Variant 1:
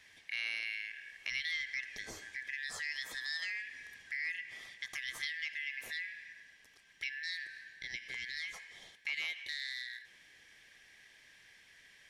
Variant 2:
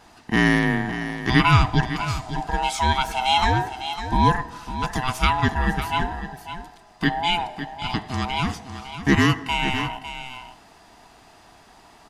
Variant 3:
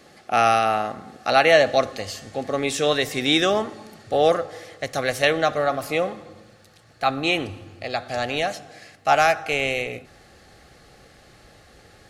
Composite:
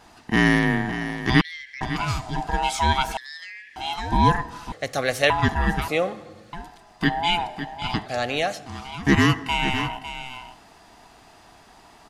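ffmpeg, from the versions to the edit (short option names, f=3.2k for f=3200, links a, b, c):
-filter_complex "[0:a]asplit=2[a][b];[2:a]asplit=3[c][d][e];[1:a]asplit=6[f][g][h][i][j][k];[f]atrim=end=1.412[l];[a]atrim=start=1.408:end=1.812[m];[g]atrim=start=1.808:end=3.172[n];[b]atrim=start=3.168:end=3.762[o];[h]atrim=start=3.758:end=4.722[p];[c]atrim=start=4.718:end=5.302[q];[i]atrim=start=5.298:end=5.882[r];[d]atrim=start=5.878:end=6.532[s];[j]atrim=start=6.528:end=8.062[t];[e]atrim=start=8.058:end=8.662[u];[k]atrim=start=8.658[v];[l][m]acrossfade=d=0.004:c1=hsin:c2=hsin[w];[w][n]acrossfade=d=0.004:c1=hsin:c2=hsin[x];[x][o]acrossfade=d=0.004:c1=hsin:c2=hsin[y];[y][p]acrossfade=d=0.004:c1=hsin:c2=hsin[z];[z][q]acrossfade=d=0.004:c1=hsin:c2=hsin[aa];[aa][r]acrossfade=d=0.004:c1=hsin:c2=hsin[ab];[ab][s]acrossfade=d=0.004:c1=hsin:c2=hsin[ac];[ac][t]acrossfade=d=0.004:c1=hsin:c2=hsin[ad];[ad][u]acrossfade=d=0.004:c1=hsin:c2=hsin[ae];[ae][v]acrossfade=d=0.004:c1=hsin:c2=hsin"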